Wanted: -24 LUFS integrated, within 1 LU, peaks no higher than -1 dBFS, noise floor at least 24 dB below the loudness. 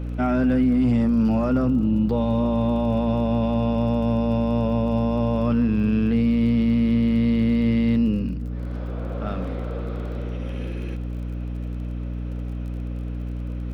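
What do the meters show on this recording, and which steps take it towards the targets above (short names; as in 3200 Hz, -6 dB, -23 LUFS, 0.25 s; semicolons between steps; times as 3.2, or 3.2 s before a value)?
ticks 30/s; hum 60 Hz; harmonics up to 300 Hz; hum level -26 dBFS; loudness -23.0 LUFS; peak -11.5 dBFS; loudness target -24.0 LUFS
-> de-click; notches 60/120/180/240/300 Hz; gain -1 dB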